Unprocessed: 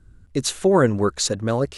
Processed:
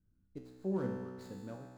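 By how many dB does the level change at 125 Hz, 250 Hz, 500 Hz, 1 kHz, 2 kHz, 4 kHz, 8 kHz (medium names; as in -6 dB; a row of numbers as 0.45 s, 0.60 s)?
-19.0 dB, -16.5 dB, -21.5 dB, -25.0 dB, -25.0 dB, under -35 dB, under -35 dB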